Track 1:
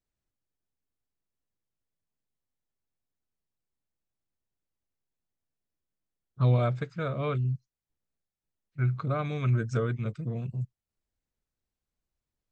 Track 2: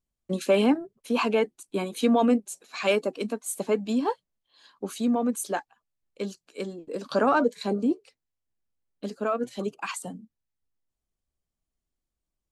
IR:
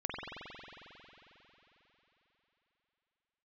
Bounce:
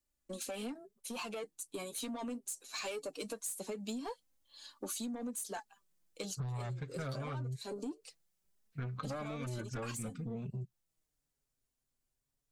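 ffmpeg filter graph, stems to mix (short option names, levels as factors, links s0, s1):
-filter_complex "[0:a]acontrast=90,asoftclip=type=tanh:threshold=0.1,volume=0.562[s0];[1:a]bass=f=250:g=-3,treble=f=4000:g=14,acompressor=threshold=0.0447:ratio=2,asoftclip=type=tanh:threshold=0.0631,volume=0.501[s1];[s0][s1]amix=inputs=2:normalize=0,dynaudnorm=f=240:g=21:m=2,flanger=delay=3.4:depth=4.3:regen=19:speed=0.21:shape=sinusoidal,acompressor=threshold=0.0141:ratio=16"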